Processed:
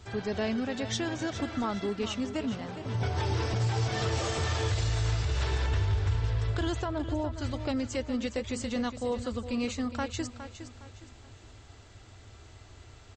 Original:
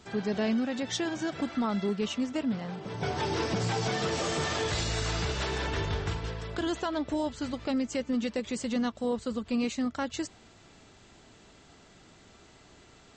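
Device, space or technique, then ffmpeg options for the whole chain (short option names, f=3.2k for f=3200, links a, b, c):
car stereo with a boomy subwoofer: -filter_complex "[0:a]lowshelf=f=130:t=q:w=3:g=8,alimiter=limit=-21dB:level=0:latency=1:release=122,asplit=3[a][b][c];[a]afade=t=out:st=6.83:d=0.02[d];[b]lowpass=f=1.1k:p=1,afade=t=in:st=6.83:d=0.02,afade=t=out:st=7.37:d=0.02[e];[c]afade=t=in:st=7.37:d=0.02[f];[d][e][f]amix=inputs=3:normalize=0,aecho=1:1:412|824|1236|1648:0.282|0.093|0.0307|0.0101"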